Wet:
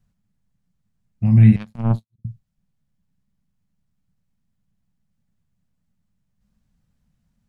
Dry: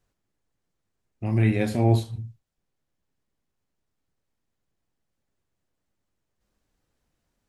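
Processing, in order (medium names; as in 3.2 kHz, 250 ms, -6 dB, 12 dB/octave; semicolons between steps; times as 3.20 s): 1.56–2.25 s: power-law waveshaper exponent 3; resonant low shelf 260 Hz +10 dB, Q 3; trim -1.5 dB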